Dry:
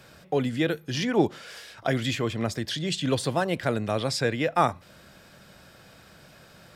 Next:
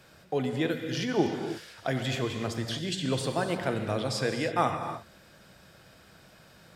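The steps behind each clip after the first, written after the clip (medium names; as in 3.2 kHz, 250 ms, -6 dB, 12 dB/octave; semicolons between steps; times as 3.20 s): reverberation, pre-delay 3 ms, DRR 5 dB; trim -4.5 dB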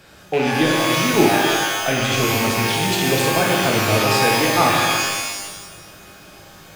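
rattle on loud lows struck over -39 dBFS, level -24 dBFS; pitch-shifted reverb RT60 1.1 s, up +12 st, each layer -2 dB, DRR 1 dB; trim +7.5 dB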